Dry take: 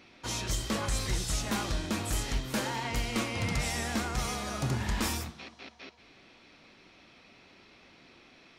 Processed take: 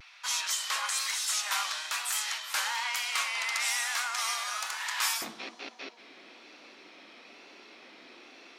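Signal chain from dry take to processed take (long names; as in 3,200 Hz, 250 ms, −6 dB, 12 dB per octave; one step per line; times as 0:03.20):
high-pass filter 1,000 Hz 24 dB per octave, from 0:05.22 260 Hz
pitch vibrato 1.1 Hz 57 cents
level +5.5 dB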